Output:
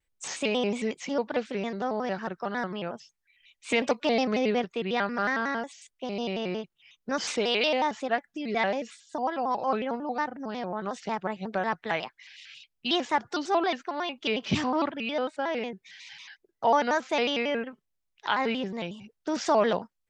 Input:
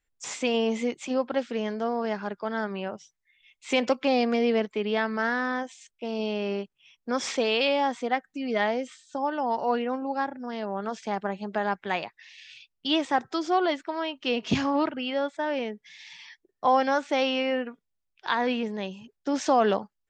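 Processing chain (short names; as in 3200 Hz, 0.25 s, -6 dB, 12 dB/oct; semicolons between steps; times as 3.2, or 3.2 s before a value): dynamic EQ 330 Hz, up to -3 dB, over -33 dBFS, Q 0.76; shaped vibrato square 5.5 Hz, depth 160 cents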